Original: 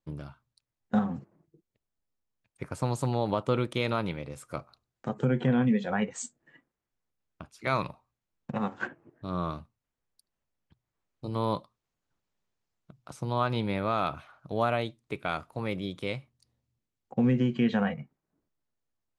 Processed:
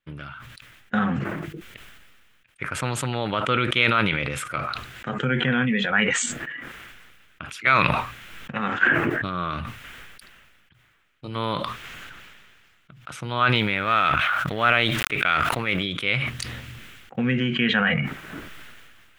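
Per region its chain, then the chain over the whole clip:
0:13.55–0:15.83: mu-law and A-law mismatch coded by A + level that may fall only so fast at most 29 dB per second
whole clip: flat-topped bell 2,100 Hz +14.5 dB; level that may fall only so fast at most 28 dB per second

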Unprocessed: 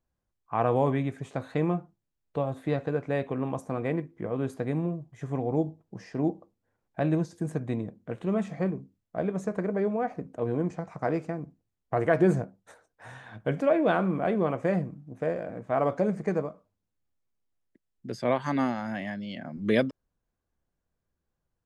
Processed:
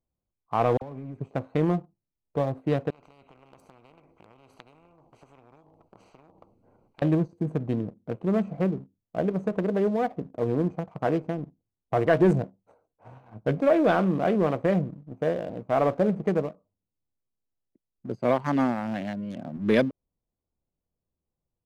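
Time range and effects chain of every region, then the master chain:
0:00.77–0:01.20: parametric band 390 Hz −4 dB 0.84 octaves + downward compressor 8 to 1, threshold −36 dBFS + all-pass dispersion lows, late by 48 ms, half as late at 1,700 Hz
0:02.90–0:07.02: downward compressor 4 to 1, threshold −40 dBFS + every bin compressed towards the loudest bin 10 to 1
whole clip: adaptive Wiener filter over 25 samples; low-shelf EQ 65 Hz −3.5 dB; leveller curve on the samples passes 1

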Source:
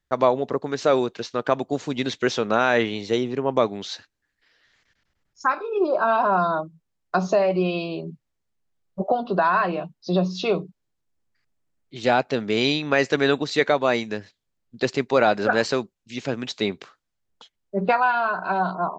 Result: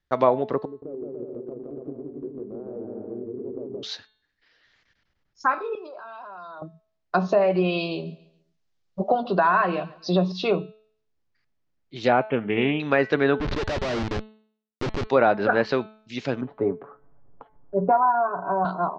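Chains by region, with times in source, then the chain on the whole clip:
0:00.65–0:03.83: transistor ladder low-pass 460 Hz, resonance 50% + downward compressor 2.5 to 1, threshold −38 dBFS + bouncing-ball delay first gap 170 ms, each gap 0.7×, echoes 6, each echo −2 dB
0:05.75–0:06.62: high-pass filter 1,000 Hz 6 dB per octave + output level in coarse steps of 20 dB
0:07.41–0:10.32: high-shelf EQ 3,800 Hz +11 dB + repeating echo 140 ms, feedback 37%, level −21.5 dB
0:12.12–0:12.80: linear-phase brick-wall low-pass 3,300 Hz + highs frequency-modulated by the lows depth 0.1 ms
0:13.39–0:15.07: high-shelf EQ 2,300 Hz −11.5 dB + comparator with hysteresis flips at −32.5 dBFS
0:16.41–0:18.65: low-pass filter 1,100 Hz 24 dB per octave + comb filter 7.1 ms, depth 67% + upward compression, threshold −32 dBFS
whole clip: treble cut that deepens with the level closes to 2,000 Hz, closed at −15.5 dBFS; low-pass filter 5,700 Hz 24 dB per octave; hum removal 216.5 Hz, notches 20

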